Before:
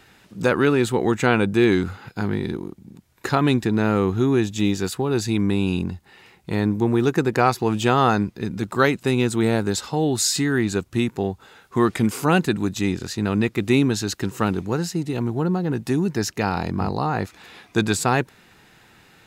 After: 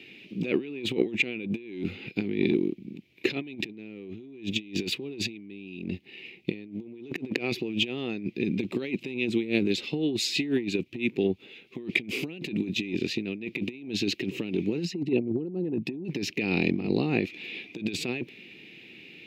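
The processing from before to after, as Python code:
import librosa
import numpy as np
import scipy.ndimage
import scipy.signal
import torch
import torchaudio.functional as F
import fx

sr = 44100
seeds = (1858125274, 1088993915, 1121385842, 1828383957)

y = fx.leveller(x, sr, passes=1, at=(3.56, 7.43))
y = fx.harmonic_tremolo(y, sr, hz=6.0, depth_pct=50, crossover_hz=1700.0, at=(9.14, 11.78))
y = fx.envelope_sharpen(y, sr, power=1.5, at=(14.85, 16.05))
y = fx.curve_eq(y, sr, hz=(350.0, 910.0, 1500.0, 2400.0, 8600.0, 13000.0), db=(0, -25, -26, 5, -27, -21))
y = fx.over_compress(y, sr, threshold_db=-27.0, ratio=-0.5)
y = scipy.signal.sosfilt(scipy.signal.butter(2, 270.0, 'highpass', fs=sr, output='sos'), y)
y = F.gain(torch.from_numpy(y), 2.5).numpy()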